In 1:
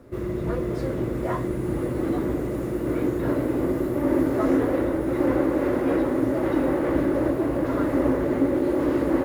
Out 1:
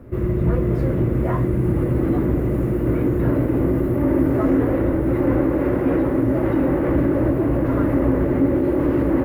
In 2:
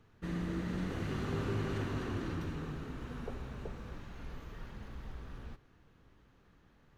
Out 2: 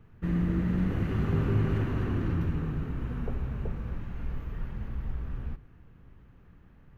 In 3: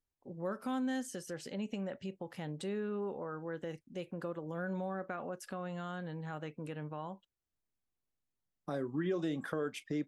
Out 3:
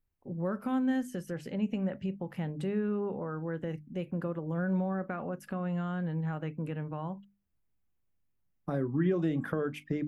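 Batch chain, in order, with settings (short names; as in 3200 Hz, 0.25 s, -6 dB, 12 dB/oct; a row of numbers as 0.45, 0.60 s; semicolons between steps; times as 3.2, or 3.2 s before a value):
band shelf 5700 Hz -8.5 dB; in parallel at +2 dB: limiter -18 dBFS; on the sum: tone controls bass +10 dB, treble -1 dB; notches 50/100/150/200/250/300 Hz; gain -4.5 dB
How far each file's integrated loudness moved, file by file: +4.5, +8.5, +6.0 LU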